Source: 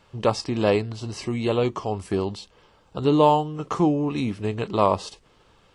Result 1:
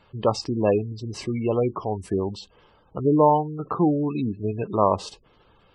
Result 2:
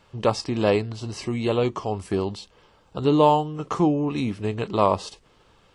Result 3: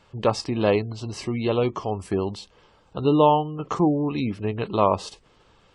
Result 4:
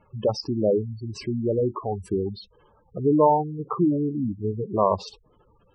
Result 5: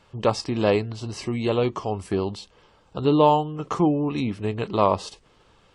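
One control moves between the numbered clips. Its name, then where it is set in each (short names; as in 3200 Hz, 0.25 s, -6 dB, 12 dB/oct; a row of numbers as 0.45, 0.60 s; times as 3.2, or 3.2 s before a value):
spectral gate, under each frame's peak: -20, -60, -35, -10, -45 dB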